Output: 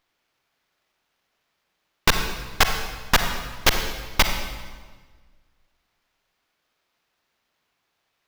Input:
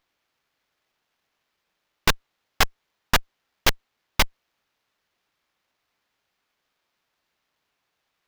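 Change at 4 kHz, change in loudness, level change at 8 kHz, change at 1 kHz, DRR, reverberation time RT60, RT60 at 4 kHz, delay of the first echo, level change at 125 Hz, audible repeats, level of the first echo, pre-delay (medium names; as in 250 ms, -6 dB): +2.5 dB, +1.5 dB, +2.5 dB, +2.5 dB, 5.0 dB, 1.5 s, 1.2 s, no echo, +3.0 dB, no echo, no echo, 39 ms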